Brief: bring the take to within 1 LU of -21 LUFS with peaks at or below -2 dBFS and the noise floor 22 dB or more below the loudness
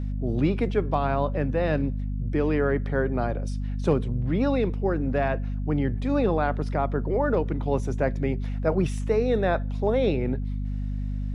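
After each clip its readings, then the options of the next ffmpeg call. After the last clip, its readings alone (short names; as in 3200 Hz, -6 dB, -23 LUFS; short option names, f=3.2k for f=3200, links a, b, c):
hum 50 Hz; harmonics up to 250 Hz; hum level -26 dBFS; loudness -26.0 LUFS; peak -10.0 dBFS; loudness target -21.0 LUFS
-> -af "bandreject=f=50:t=h:w=4,bandreject=f=100:t=h:w=4,bandreject=f=150:t=h:w=4,bandreject=f=200:t=h:w=4,bandreject=f=250:t=h:w=4"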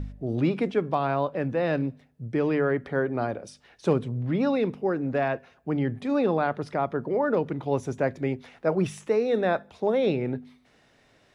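hum none; loudness -27.0 LUFS; peak -12.0 dBFS; loudness target -21.0 LUFS
-> -af "volume=6dB"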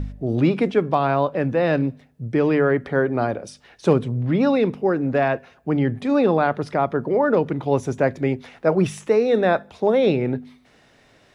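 loudness -21.0 LUFS; peak -6.0 dBFS; noise floor -56 dBFS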